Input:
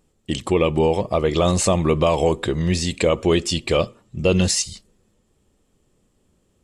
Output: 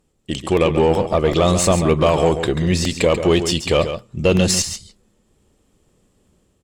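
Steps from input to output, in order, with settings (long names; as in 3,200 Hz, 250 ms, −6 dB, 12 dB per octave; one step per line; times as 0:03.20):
automatic gain control gain up to 5 dB
harmonic generator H 6 −26 dB, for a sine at −2.5 dBFS
on a send: single-tap delay 138 ms −9.5 dB
on the sum: regular buffer underruns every 0.38 s, samples 64, repeat, from 0:00.57
level −1 dB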